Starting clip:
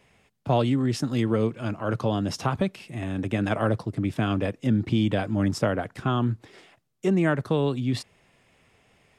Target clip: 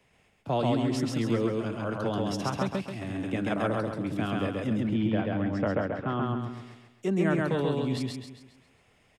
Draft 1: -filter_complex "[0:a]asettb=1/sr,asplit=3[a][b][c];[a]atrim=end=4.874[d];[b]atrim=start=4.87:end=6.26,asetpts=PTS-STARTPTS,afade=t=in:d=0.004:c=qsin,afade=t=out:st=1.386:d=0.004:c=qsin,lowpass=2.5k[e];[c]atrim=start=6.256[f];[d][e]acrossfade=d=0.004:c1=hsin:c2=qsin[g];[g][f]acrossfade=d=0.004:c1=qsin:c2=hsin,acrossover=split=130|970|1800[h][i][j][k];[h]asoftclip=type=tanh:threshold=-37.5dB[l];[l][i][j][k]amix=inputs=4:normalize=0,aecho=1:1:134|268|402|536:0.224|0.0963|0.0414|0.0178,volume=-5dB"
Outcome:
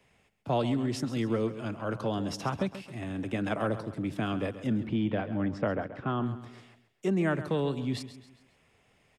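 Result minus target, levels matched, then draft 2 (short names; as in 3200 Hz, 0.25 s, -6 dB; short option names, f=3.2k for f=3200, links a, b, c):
echo-to-direct -11.5 dB
-filter_complex "[0:a]asettb=1/sr,asplit=3[a][b][c];[a]atrim=end=4.874[d];[b]atrim=start=4.87:end=6.26,asetpts=PTS-STARTPTS,afade=t=in:d=0.004:c=qsin,afade=t=out:st=1.386:d=0.004:c=qsin,lowpass=2.5k[e];[c]atrim=start=6.256[f];[d][e]acrossfade=d=0.004:c1=hsin:c2=qsin[g];[g][f]acrossfade=d=0.004:c1=qsin:c2=hsin,acrossover=split=130|970|1800[h][i][j][k];[h]asoftclip=type=tanh:threshold=-37.5dB[l];[l][i][j][k]amix=inputs=4:normalize=0,aecho=1:1:134|268|402|536|670|804:0.841|0.362|0.156|0.0669|0.0288|0.0124,volume=-5dB"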